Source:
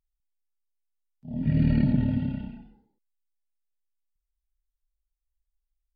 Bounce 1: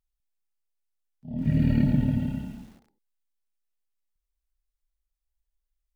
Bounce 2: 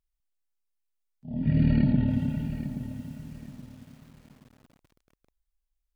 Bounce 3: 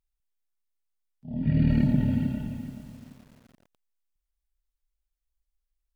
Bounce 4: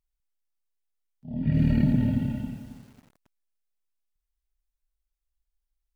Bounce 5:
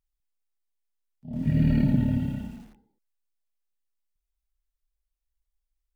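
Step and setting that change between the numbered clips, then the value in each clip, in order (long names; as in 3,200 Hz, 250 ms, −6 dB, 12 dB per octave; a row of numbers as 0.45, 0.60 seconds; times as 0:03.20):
feedback echo at a low word length, delay time: 137, 825, 428, 272, 82 milliseconds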